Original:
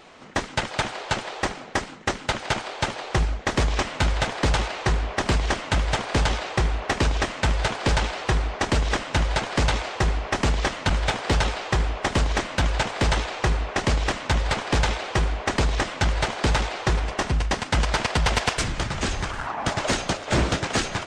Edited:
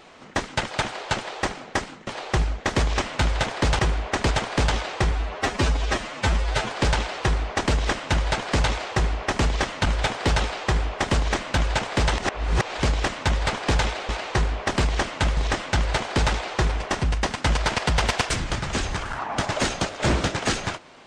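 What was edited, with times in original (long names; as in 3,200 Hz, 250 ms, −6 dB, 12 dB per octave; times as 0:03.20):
0:02.07–0:02.88: remove
0:04.60–0:05.88: swap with 0:15.13–0:15.65
0:06.68–0:07.74: time-stretch 1.5×
0:13.22–0:13.87: reverse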